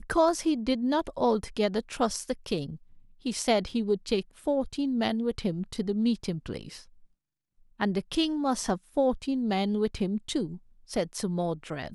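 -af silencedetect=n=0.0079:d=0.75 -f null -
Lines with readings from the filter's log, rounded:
silence_start: 6.82
silence_end: 7.80 | silence_duration: 0.98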